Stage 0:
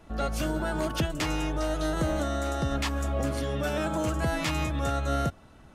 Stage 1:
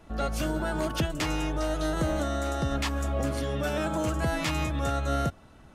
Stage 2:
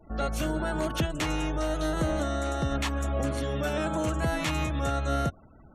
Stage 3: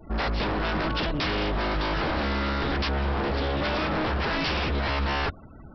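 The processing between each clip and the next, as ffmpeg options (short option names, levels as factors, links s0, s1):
-af anull
-af "afftfilt=real='re*gte(hypot(re,im),0.00316)':imag='im*gte(hypot(re,im),0.00316)':win_size=1024:overlap=0.75,bandreject=f=4900:w=8.5"
-af "equalizer=f=700:w=1.5:g=-3.5,aresample=11025,aeval=exprs='0.0335*(abs(mod(val(0)/0.0335+3,4)-2)-1)':c=same,aresample=44100,volume=2.51"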